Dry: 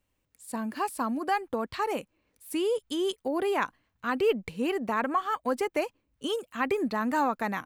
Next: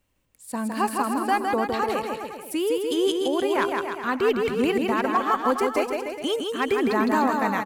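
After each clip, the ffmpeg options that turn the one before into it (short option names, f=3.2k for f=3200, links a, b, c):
-af "asoftclip=type=hard:threshold=-18dB,tremolo=f=1.3:d=0.3,aecho=1:1:160|296|411.6|509.9|593.4:0.631|0.398|0.251|0.158|0.1,volume=5.5dB"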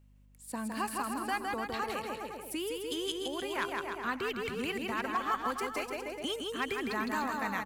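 -filter_complex "[0:a]acrossover=split=150|1200[a][b][c];[b]acompressor=threshold=-31dB:ratio=6[d];[a][d][c]amix=inputs=3:normalize=0,aeval=exprs='val(0)+0.002*(sin(2*PI*50*n/s)+sin(2*PI*2*50*n/s)/2+sin(2*PI*3*50*n/s)/3+sin(2*PI*4*50*n/s)/4+sin(2*PI*5*50*n/s)/5)':c=same,volume=-5.5dB"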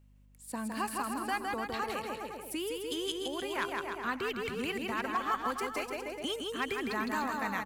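-af anull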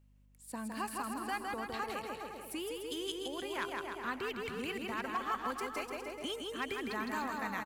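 -af "aecho=1:1:458:0.211,volume=-4dB"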